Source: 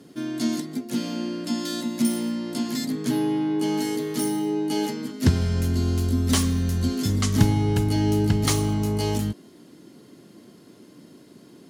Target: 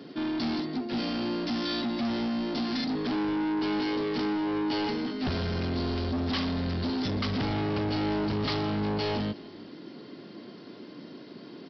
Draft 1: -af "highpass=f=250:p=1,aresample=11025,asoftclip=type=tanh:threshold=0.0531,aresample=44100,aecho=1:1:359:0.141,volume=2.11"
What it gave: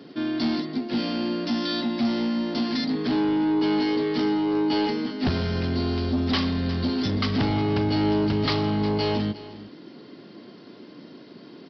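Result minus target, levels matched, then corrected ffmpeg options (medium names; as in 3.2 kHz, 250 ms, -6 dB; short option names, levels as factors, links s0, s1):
echo-to-direct +8 dB; saturation: distortion -5 dB
-af "highpass=f=250:p=1,aresample=11025,asoftclip=type=tanh:threshold=0.0211,aresample=44100,aecho=1:1:359:0.0562,volume=2.11"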